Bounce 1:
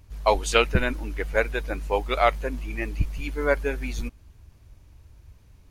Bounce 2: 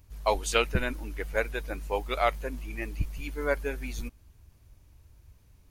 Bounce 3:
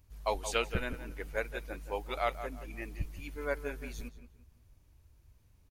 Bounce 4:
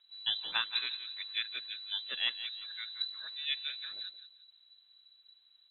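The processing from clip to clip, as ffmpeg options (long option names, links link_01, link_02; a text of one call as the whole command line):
ffmpeg -i in.wav -af "highshelf=frequency=9100:gain=9.5,volume=-5.5dB" out.wav
ffmpeg -i in.wav -filter_complex "[0:a]asplit=2[link_01][link_02];[link_02]adelay=174,lowpass=frequency=2300:poles=1,volume=-10.5dB,asplit=2[link_03][link_04];[link_04]adelay=174,lowpass=frequency=2300:poles=1,volume=0.33,asplit=2[link_05][link_06];[link_06]adelay=174,lowpass=frequency=2300:poles=1,volume=0.33,asplit=2[link_07][link_08];[link_08]adelay=174,lowpass=frequency=2300:poles=1,volume=0.33[link_09];[link_01][link_03][link_05][link_07][link_09]amix=inputs=5:normalize=0,volume=-6.5dB" out.wav
ffmpeg -i in.wav -af "lowpass=frequency=3400:width_type=q:width=0.5098,lowpass=frequency=3400:width_type=q:width=0.6013,lowpass=frequency=3400:width_type=q:width=0.9,lowpass=frequency=3400:width_type=q:width=2.563,afreqshift=-4000,volume=-1.5dB" out.wav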